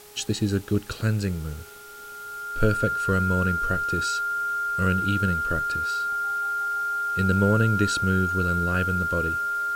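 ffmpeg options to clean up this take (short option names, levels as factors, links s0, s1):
-af "adeclick=t=4,bandreject=f=416:t=h:w=4,bandreject=f=832:t=h:w=4,bandreject=f=1248:t=h:w=4,bandreject=f=1400:w=30,afwtdn=0.004"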